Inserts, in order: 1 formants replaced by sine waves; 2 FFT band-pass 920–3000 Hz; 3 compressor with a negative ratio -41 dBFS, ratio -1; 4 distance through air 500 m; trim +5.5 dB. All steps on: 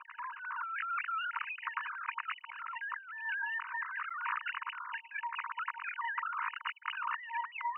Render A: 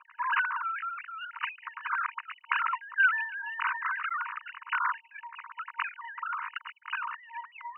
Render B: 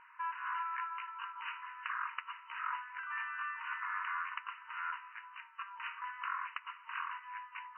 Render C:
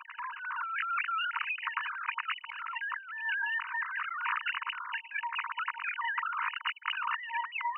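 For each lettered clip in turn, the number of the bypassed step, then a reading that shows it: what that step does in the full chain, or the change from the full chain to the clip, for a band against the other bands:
3, crest factor change +3.5 dB; 1, crest factor change +2.0 dB; 4, loudness change +4.0 LU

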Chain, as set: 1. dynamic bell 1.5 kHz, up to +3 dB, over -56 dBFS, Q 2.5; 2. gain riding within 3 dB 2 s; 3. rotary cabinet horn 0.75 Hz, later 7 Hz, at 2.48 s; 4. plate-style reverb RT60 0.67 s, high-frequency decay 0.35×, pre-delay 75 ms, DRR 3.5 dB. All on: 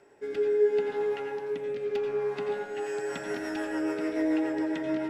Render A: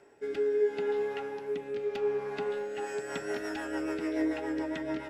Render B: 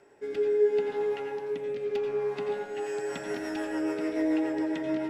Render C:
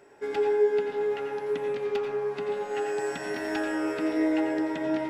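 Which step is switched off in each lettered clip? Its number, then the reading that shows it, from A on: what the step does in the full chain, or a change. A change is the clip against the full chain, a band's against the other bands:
4, 250 Hz band -2.5 dB; 1, 2 kHz band -1.5 dB; 3, momentary loudness spread change -2 LU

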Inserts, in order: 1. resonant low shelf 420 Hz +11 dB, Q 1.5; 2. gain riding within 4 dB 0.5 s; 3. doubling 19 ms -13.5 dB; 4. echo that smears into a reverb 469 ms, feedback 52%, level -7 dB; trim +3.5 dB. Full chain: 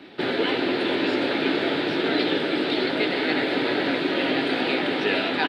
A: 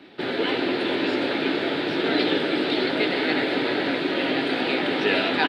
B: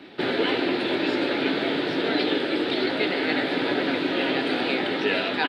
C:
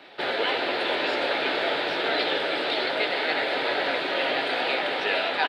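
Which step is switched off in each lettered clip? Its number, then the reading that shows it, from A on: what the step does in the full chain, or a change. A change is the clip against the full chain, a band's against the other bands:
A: 2, momentary loudness spread change +2 LU; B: 4, echo-to-direct -5.5 dB to none; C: 1, 125 Hz band -12.5 dB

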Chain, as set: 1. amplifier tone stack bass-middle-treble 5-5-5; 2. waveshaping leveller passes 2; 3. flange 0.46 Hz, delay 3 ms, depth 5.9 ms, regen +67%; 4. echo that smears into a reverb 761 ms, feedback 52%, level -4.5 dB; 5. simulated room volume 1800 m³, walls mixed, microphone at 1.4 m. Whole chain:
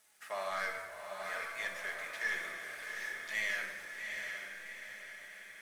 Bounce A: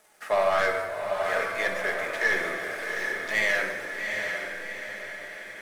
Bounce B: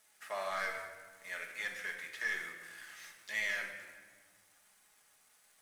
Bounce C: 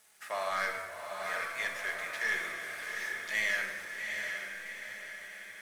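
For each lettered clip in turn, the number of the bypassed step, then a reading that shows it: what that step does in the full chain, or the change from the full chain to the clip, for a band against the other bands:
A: 1, 250 Hz band +7.5 dB; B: 4, echo-to-direct 1.5 dB to -2.5 dB; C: 3, loudness change +4.0 LU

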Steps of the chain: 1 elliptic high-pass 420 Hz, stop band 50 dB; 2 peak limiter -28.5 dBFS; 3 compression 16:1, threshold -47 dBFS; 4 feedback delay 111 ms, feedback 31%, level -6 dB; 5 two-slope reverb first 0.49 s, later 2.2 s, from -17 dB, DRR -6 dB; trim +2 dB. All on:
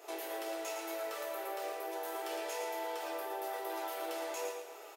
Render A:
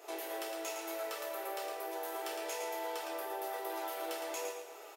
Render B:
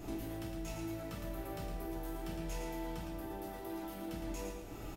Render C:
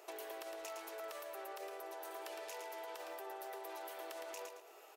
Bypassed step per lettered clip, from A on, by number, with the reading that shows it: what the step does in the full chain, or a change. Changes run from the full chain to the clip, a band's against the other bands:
2, 8 kHz band +2.0 dB; 1, 250 Hz band +14.0 dB; 5, echo-to-direct 7.5 dB to -5.5 dB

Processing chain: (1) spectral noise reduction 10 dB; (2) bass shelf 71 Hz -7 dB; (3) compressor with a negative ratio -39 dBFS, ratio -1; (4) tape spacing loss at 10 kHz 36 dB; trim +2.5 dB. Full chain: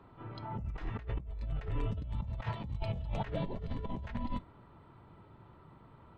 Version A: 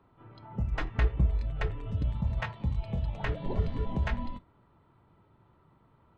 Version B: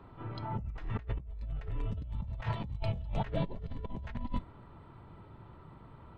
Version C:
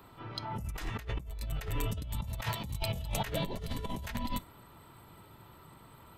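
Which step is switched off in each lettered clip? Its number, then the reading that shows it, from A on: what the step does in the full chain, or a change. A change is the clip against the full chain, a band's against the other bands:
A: 3, momentary loudness spread change -13 LU; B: 2, crest factor change +3.0 dB; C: 4, 4 kHz band +10.5 dB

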